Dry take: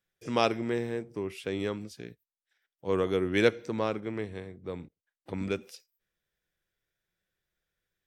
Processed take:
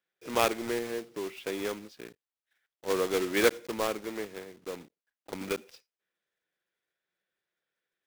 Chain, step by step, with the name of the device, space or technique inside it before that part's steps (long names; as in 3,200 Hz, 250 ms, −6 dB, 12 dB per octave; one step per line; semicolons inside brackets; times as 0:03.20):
early digital voice recorder (band-pass filter 290–3,900 Hz; one scale factor per block 3 bits)